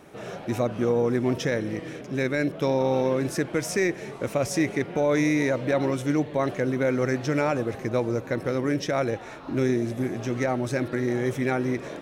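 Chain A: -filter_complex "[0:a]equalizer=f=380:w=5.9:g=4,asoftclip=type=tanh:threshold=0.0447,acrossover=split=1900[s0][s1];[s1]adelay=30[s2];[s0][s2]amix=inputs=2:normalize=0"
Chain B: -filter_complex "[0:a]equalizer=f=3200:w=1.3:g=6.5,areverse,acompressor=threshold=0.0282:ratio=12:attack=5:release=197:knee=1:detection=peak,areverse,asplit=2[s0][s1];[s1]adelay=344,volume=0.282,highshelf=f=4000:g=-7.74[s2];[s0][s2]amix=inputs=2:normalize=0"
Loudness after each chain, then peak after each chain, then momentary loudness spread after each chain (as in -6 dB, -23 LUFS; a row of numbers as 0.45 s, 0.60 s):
-31.5 LUFS, -36.0 LUFS; -21.0 dBFS, -21.5 dBFS; 3 LU, 2 LU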